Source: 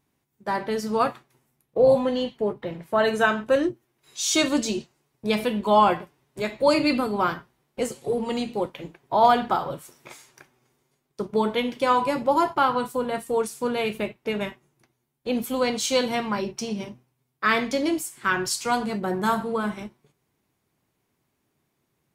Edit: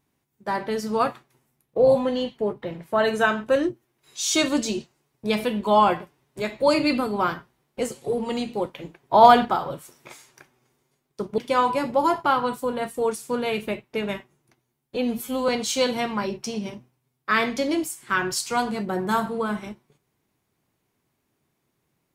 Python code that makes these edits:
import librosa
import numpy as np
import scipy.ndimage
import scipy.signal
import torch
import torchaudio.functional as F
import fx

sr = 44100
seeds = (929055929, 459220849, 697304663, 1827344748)

y = fx.edit(x, sr, fx.clip_gain(start_s=9.14, length_s=0.31, db=5.0),
    fx.cut(start_s=11.38, length_s=0.32),
    fx.stretch_span(start_s=15.28, length_s=0.35, factor=1.5), tone=tone)